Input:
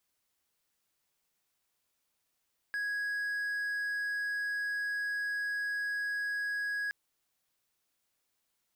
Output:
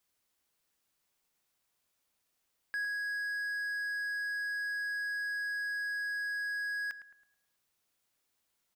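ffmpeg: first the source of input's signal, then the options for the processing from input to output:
-f lavfi -i "aevalsrc='0.0335*(1-4*abs(mod(1660*t+0.25,1)-0.5))':d=4.17:s=44100"
-filter_complex "[0:a]asplit=2[a][b];[b]adelay=108,lowpass=f=1.5k:p=1,volume=-8.5dB,asplit=2[c][d];[d]adelay=108,lowpass=f=1.5k:p=1,volume=0.53,asplit=2[e][f];[f]adelay=108,lowpass=f=1.5k:p=1,volume=0.53,asplit=2[g][h];[h]adelay=108,lowpass=f=1.5k:p=1,volume=0.53,asplit=2[i][j];[j]adelay=108,lowpass=f=1.5k:p=1,volume=0.53,asplit=2[k][l];[l]adelay=108,lowpass=f=1.5k:p=1,volume=0.53[m];[a][c][e][g][i][k][m]amix=inputs=7:normalize=0"

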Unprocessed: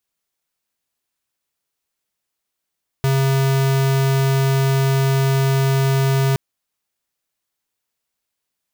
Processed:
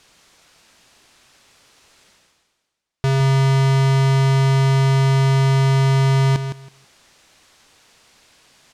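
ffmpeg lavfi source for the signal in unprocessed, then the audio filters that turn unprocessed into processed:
-f lavfi -i "aevalsrc='0.15*(2*lt(mod(135*t,1),0.5)-1)':d=3.32:s=44100"
-af "lowpass=6.4k,areverse,acompressor=mode=upward:threshold=-31dB:ratio=2.5,areverse,aecho=1:1:162|324|486:0.355|0.0639|0.0115"

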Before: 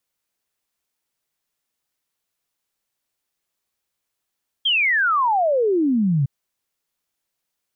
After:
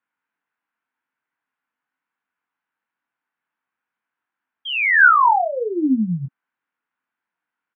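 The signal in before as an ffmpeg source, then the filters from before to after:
-f lavfi -i "aevalsrc='0.168*clip(min(t,1.61-t)/0.01,0,1)*sin(2*PI*3300*1.61/log(130/3300)*(exp(log(130/3300)*t/1.61)-1))':d=1.61:s=44100"
-filter_complex "[0:a]highpass=210,equalizer=f=270:t=q:w=4:g=4,equalizer=f=390:t=q:w=4:g=-8,equalizer=f=580:t=q:w=4:g=-9,equalizer=f=950:t=q:w=4:g=5,equalizer=f=1.5k:t=q:w=4:g=9,lowpass=f=2.4k:w=0.5412,lowpass=f=2.4k:w=1.3066,asplit=2[a][b];[b]adelay=23,volume=-5dB[c];[a][c]amix=inputs=2:normalize=0"

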